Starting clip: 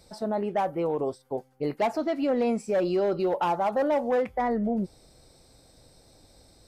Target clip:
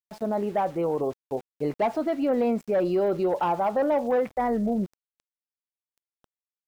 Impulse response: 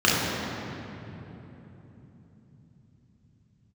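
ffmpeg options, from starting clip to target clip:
-af "aemphasis=mode=reproduction:type=75kf,aeval=exprs='val(0)*gte(abs(val(0)),0.00501)':c=same,volume=1.5dB"

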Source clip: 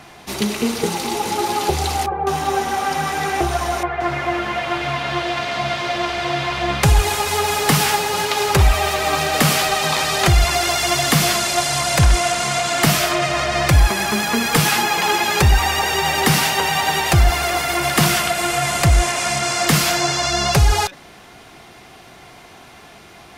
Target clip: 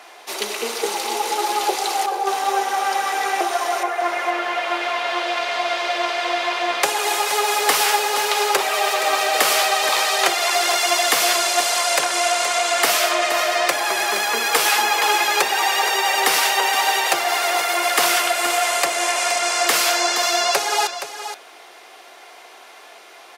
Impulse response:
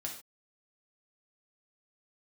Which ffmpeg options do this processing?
-filter_complex "[0:a]highpass=f=410:w=0.5412,highpass=f=410:w=1.3066,asplit=2[a][b];[b]aecho=0:1:471:0.299[c];[a][c]amix=inputs=2:normalize=0"

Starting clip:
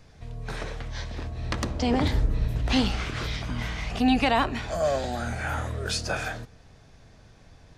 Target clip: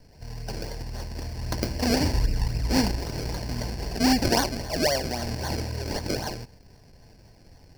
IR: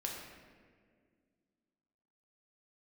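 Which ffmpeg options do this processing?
-af "acrusher=samples=33:mix=1:aa=0.000001:lfo=1:lforange=33:lforate=3.8,superequalizer=10b=0.316:13b=0.562:14b=3.55"

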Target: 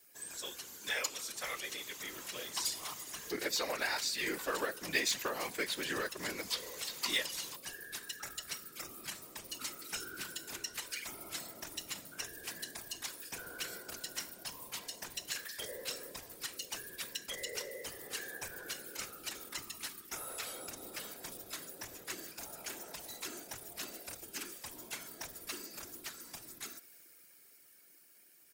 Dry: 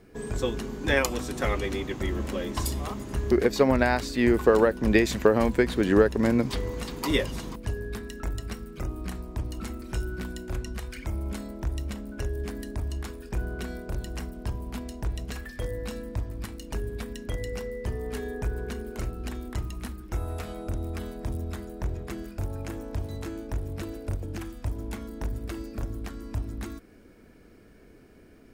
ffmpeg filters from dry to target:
-filter_complex "[0:a]dynaudnorm=f=130:g=31:m=8dB,aderivative,acrossover=split=5900[a][b];[b]acompressor=threshold=-54dB:ratio=4:attack=1:release=60[c];[a][c]amix=inputs=2:normalize=0,asplit=2[d][e];[e]aeval=exprs='0.0237*(abs(mod(val(0)/0.0237+3,4)-2)-1)':c=same,volume=-10dB[f];[d][f]amix=inputs=2:normalize=0,highshelf=f=7.8k:g=9.5,aecho=1:1:5.9:0.5,bandreject=f=235.8:t=h:w=4,bandreject=f=471.6:t=h:w=4,bandreject=f=707.4:t=h:w=4,bandreject=f=943.2:t=h:w=4,bandreject=f=1.179k:t=h:w=4,bandreject=f=1.4148k:t=h:w=4,bandreject=f=1.6506k:t=h:w=4,bandreject=f=1.8864k:t=h:w=4,bandreject=f=2.1222k:t=h:w=4,bandreject=f=2.358k:t=h:w=4,bandreject=f=2.5938k:t=h:w=4,bandreject=f=2.8296k:t=h:w=4,bandreject=f=3.0654k:t=h:w=4,bandreject=f=3.3012k:t=h:w=4,bandreject=f=3.537k:t=h:w=4,bandreject=f=3.7728k:t=h:w=4,bandreject=f=4.0086k:t=h:w=4,bandreject=f=4.2444k:t=h:w=4,bandreject=f=4.4802k:t=h:w=4,bandreject=f=4.716k:t=h:w=4,bandreject=f=4.9518k:t=h:w=4,bandreject=f=5.1876k:t=h:w=4,bandreject=f=5.4234k:t=h:w=4,bandreject=f=5.6592k:t=h:w=4,bandreject=f=5.895k:t=h:w=4,bandreject=f=6.1308k:t=h:w=4,bandreject=f=6.3666k:t=h:w=4,bandreject=f=6.6024k:t=h:w=4,bandreject=f=6.8382k:t=h:w=4,bandreject=f=7.074k:t=h:w=4,afftfilt=real='hypot(re,im)*cos(2*PI*random(0))':imag='hypot(re,im)*sin(2*PI*random(1))':win_size=512:overlap=0.75,volume=5dB"

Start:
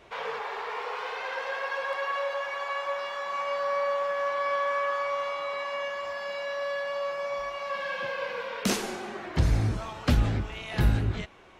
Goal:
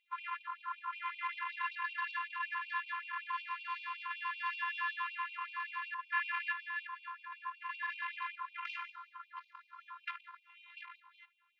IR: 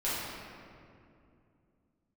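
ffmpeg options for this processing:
-filter_complex "[0:a]afwtdn=0.02,highshelf=f=2.3k:g=-6,asoftclip=type=tanh:threshold=-28.5dB,asplit=3[a][b][c];[a]afade=t=out:st=6.1:d=0.02[d];[b]acontrast=88,afade=t=in:st=6.1:d=0.02,afade=t=out:st=6.51:d=0.02[e];[c]afade=t=in:st=6.51:d=0.02[f];[d][e][f]amix=inputs=3:normalize=0,afftfilt=real='hypot(re,im)*cos(PI*b)':imag='0':win_size=512:overlap=0.75,highpass=f=180:w=0.5412,highpass=f=180:w=1.3066,equalizer=f=200:t=q:w=4:g=4,equalizer=f=500:t=q:w=4:g=5,equalizer=f=1.2k:t=q:w=4:g=4,equalizer=f=2.6k:t=q:w=4:g=5,lowpass=f=3.8k:w=0.5412,lowpass=f=3.8k:w=1.3066,afftfilt=real='re*gte(b*sr/1024,810*pow(2400/810,0.5+0.5*sin(2*PI*5.3*pts/sr)))':imag='im*gte(b*sr/1024,810*pow(2400/810,0.5+0.5*sin(2*PI*5.3*pts/sr)))':win_size=1024:overlap=0.75,volume=4.5dB"

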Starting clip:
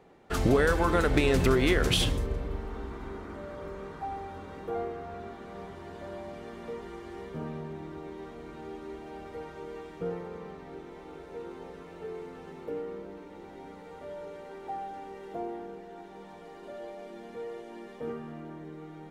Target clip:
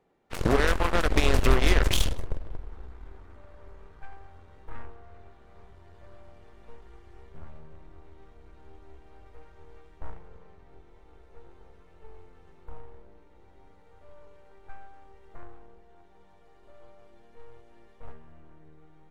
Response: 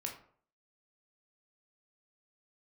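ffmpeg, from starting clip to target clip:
-af "aeval=exprs='0.299*(cos(1*acos(clip(val(0)/0.299,-1,1)))-cos(1*PI/2))+0.00944*(cos(5*acos(clip(val(0)/0.299,-1,1)))-cos(5*PI/2))+0.0596*(cos(7*acos(clip(val(0)/0.299,-1,1)))-cos(7*PI/2))+0.0188*(cos(8*acos(clip(val(0)/0.299,-1,1)))-cos(8*PI/2))':c=same,asubboost=boost=9:cutoff=71"

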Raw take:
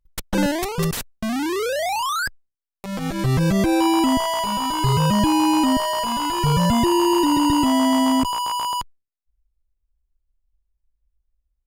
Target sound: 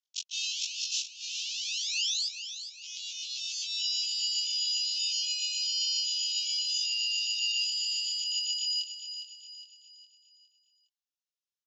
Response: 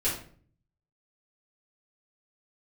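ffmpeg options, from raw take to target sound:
-filter_complex "[0:a]afftfilt=real='re':imag='-im':win_size=2048:overlap=0.75,asplit=2[a][b];[b]alimiter=limit=-17.5dB:level=0:latency=1,volume=-2.5dB[c];[a][c]amix=inputs=2:normalize=0,asuperpass=centerf=4400:order=20:qfactor=0.96,equalizer=f=5.5k:w=2.8:g=4,aecho=1:1:410|820|1230|1640|2050:0.316|0.139|0.0612|0.0269|0.0119"

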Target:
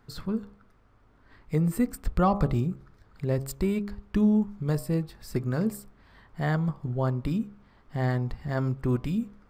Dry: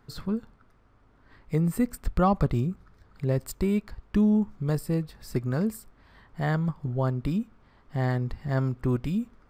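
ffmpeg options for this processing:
-af "bandreject=f=67.83:t=h:w=4,bandreject=f=135.66:t=h:w=4,bandreject=f=203.49:t=h:w=4,bandreject=f=271.32:t=h:w=4,bandreject=f=339.15:t=h:w=4,bandreject=f=406.98:t=h:w=4,bandreject=f=474.81:t=h:w=4,bandreject=f=542.64:t=h:w=4,bandreject=f=610.47:t=h:w=4,bandreject=f=678.3:t=h:w=4,bandreject=f=746.13:t=h:w=4,bandreject=f=813.96:t=h:w=4,bandreject=f=881.79:t=h:w=4,bandreject=f=949.62:t=h:w=4,bandreject=f=1.01745k:t=h:w=4,bandreject=f=1.08528k:t=h:w=4,bandreject=f=1.15311k:t=h:w=4,bandreject=f=1.22094k:t=h:w=4,bandreject=f=1.28877k:t=h:w=4"

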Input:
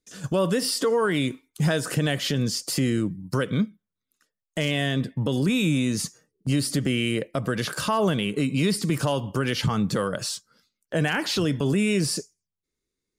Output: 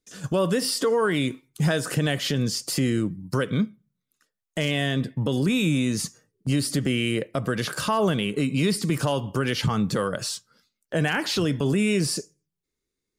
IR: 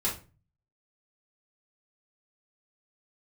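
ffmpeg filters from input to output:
-filter_complex "[0:a]asplit=2[a][b];[b]lowpass=3.3k[c];[1:a]atrim=start_sample=2205,lowshelf=f=330:g=-11.5[d];[c][d]afir=irnorm=-1:irlink=0,volume=-24.5dB[e];[a][e]amix=inputs=2:normalize=0"

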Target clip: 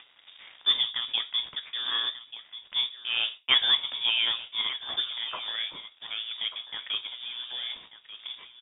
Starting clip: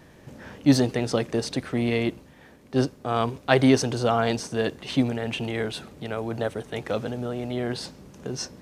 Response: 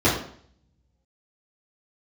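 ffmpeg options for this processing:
-filter_complex "[0:a]highpass=280,acompressor=mode=upward:threshold=-33dB:ratio=2.5,acrusher=bits=8:mix=0:aa=0.000001,aeval=exprs='sgn(val(0))*max(abs(val(0))-0.00891,0)':c=same,flanger=delay=8.5:depth=8.7:regen=67:speed=1.1:shape=triangular,aecho=1:1:1188:0.2,asplit=2[a][b];[1:a]atrim=start_sample=2205,afade=t=out:st=0.16:d=0.01,atrim=end_sample=7497[c];[b][c]afir=irnorm=-1:irlink=0,volume=-31.5dB[d];[a][d]amix=inputs=2:normalize=0,lowpass=f=3.2k:t=q:w=0.5098,lowpass=f=3.2k:t=q:w=0.6013,lowpass=f=3.2k:t=q:w=0.9,lowpass=f=3.2k:t=q:w=2.563,afreqshift=-3800,volume=1.5dB"

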